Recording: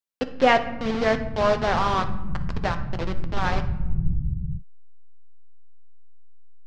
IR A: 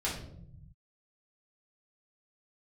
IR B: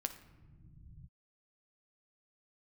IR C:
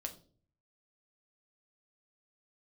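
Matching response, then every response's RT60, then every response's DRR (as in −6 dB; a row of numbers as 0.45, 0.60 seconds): B; 0.70 s, non-exponential decay, 0.45 s; −6.5, 8.0, 4.0 decibels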